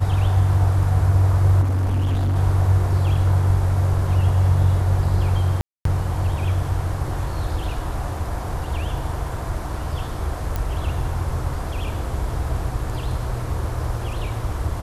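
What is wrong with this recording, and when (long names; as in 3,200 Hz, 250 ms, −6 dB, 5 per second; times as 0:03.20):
0:01.61–0:02.37: clipping −17.5 dBFS
0:05.61–0:05.85: drop-out 243 ms
0:10.56: click −11 dBFS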